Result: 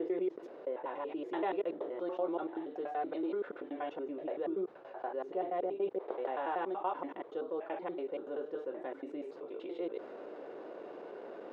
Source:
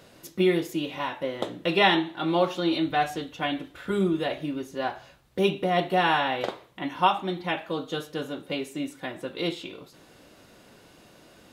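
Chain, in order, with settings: slices in reverse order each 95 ms, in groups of 7; low shelf 480 Hz -8.5 dB; reverse; upward compressor, threshold -41 dBFS; reverse; ladder band-pass 480 Hz, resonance 50%; fast leveller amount 50%

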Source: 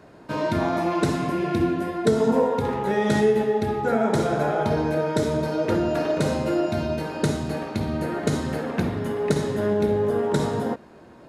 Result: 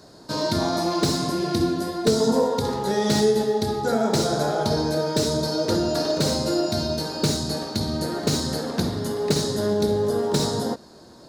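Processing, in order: resonant high shelf 3400 Hz +10 dB, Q 3; slew limiter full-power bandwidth 300 Hz

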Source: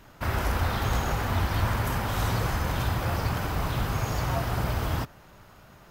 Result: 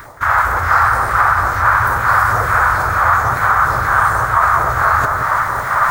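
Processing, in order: recorder AGC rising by 9.6 dB/s; formant shift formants +5 st; EQ curve 100 Hz 0 dB, 220 Hz -14 dB, 1200 Hz +11 dB, 1800 Hz -2 dB, 2700 Hz -24 dB; reverse; compressor 5:1, threshold -43 dBFS, peak gain reduction 21 dB; reverse; phaser stages 2, 2.2 Hz, lowest notch 270–1500 Hz; RIAA curve recording; echo with dull and thin repeats by turns 0.172 s, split 2100 Hz, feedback 59%, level -5 dB; reverb RT60 2.4 s, pre-delay 0.21 s, DRR 10 dB; maximiser +35 dB; gain -1 dB

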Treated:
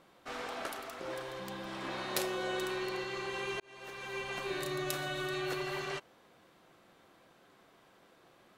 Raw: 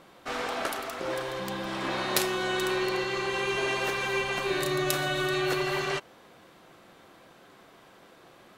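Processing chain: 2.17–2.65 bell 530 Hz +7.5 dB 0.68 oct; 3.6–4.36 fade in; gain -8.5 dB

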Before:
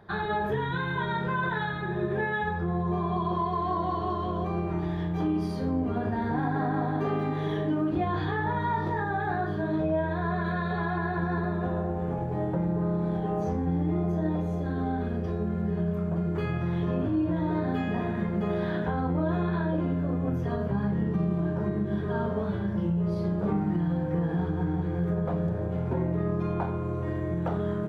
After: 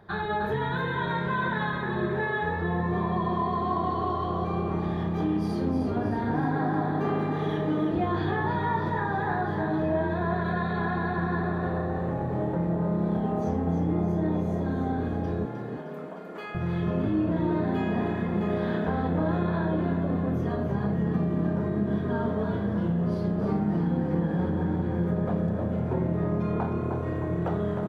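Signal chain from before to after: 15.45–16.55 HPF 660 Hz 12 dB/oct; frequency-shifting echo 0.308 s, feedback 54%, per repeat +34 Hz, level -7 dB

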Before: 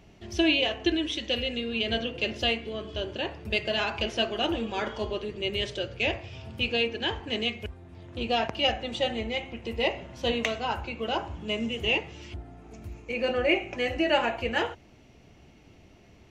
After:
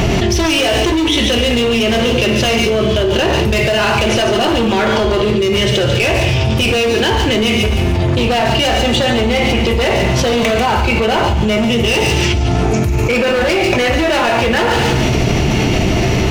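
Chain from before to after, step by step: dynamic EQ 4700 Hz, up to -6 dB, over -42 dBFS, Q 0.73; in parallel at +2 dB: limiter -24 dBFS, peak gain reduction 11 dB; on the sum: overloaded stage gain 24 dB; thin delay 0.143 s, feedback 30%, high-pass 3100 Hz, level -6 dB; reverb RT60 0.80 s, pre-delay 4 ms, DRR 4.5 dB; fast leveller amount 100%; gain +8.5 dB

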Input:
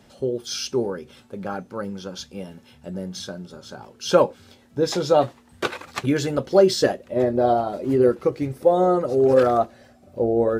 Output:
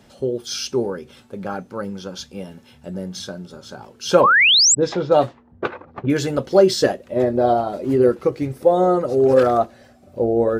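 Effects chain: 4.21–6.1 low-pass opened by the level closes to 370 Hz, open at -13.5 dBFS; 4.23–4.75 painted sound rise 1000–8200 Hz -15 dBFS; gain +2 dB

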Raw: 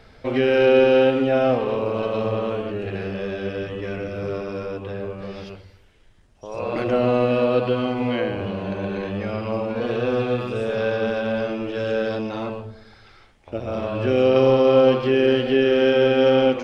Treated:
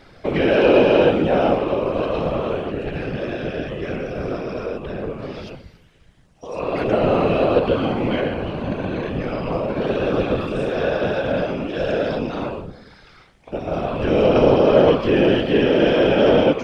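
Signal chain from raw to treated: one diode to ground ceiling -9 dBFS; whisperiser; gain +2.5 dB

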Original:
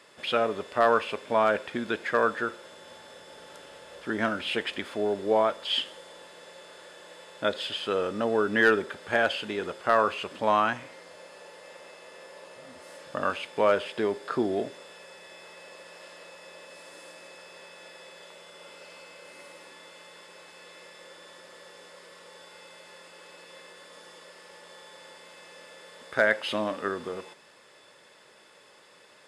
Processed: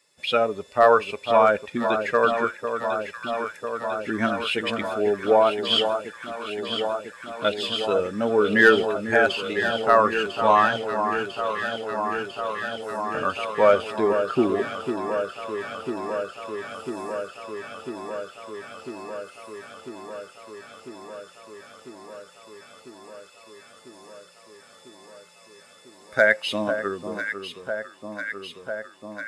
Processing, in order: per-bin expansion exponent 1.5; echo with dull and thin repeats by turns 0.499 s, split 1400 Hz, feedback 88%, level -7.5 dB; gain +7.5 dB

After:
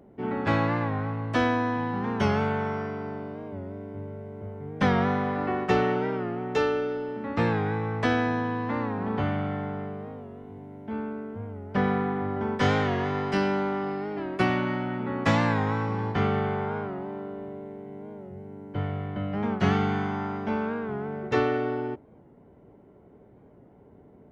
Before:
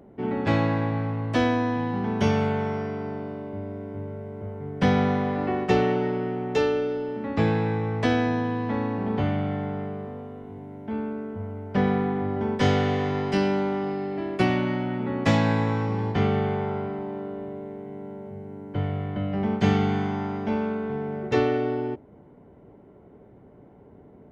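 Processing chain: dynamic EQ 1300 Hz, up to +7 dB, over -44 dBFS, Q 1.3; record warp 45 rpm, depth 100 cents; gain -3 dB

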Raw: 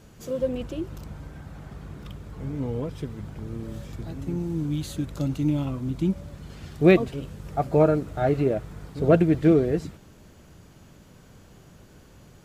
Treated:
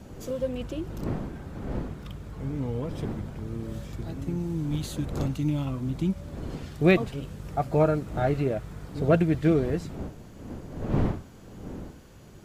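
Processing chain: wind noise 290 Hz -36 dBFS; dynamic EQ 370 Hz, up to -5 dB, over -31 dBFS, Q 0.8

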